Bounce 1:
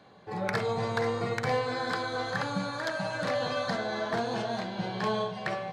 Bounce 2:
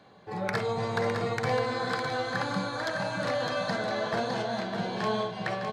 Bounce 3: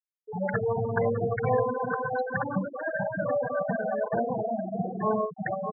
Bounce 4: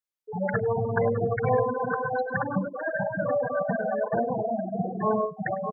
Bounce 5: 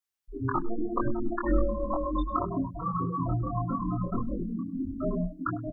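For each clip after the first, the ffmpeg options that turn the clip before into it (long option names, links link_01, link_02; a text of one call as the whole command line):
ffmpeg -i in.wav -af "aecho=1:1:608:0.501" out.wav
ffmpeg -i in.wav -af "afftfilt=real='re*gte(hypot(re,im),0.1)':imag='im*gte(hypot(re,im),0.1)':win_size=1024:overlap=0.75,volume=4dB" out.wav
ffmpeg -i in.wav -af "aecho=1:1:102:0.0708,volume=1.5dB" out.wav
ffmpeg -i in.wav -filter_complex "[0:a]acrossover=split=150|380|1300[link_01][link_02][link_03][link_04];[link_04]acontrast=78[link_05];[link_01][link_02][link_03][link_05]amix=inputs=4:normalize=0,afreqshift=-460,asplit=2[link_06][link_07];[link_07]adelay=23,volume=-2.5dB[link_08];[link_06][link_08]amix=inputs=2:normalize=0,volume=-5.5dB" out.wav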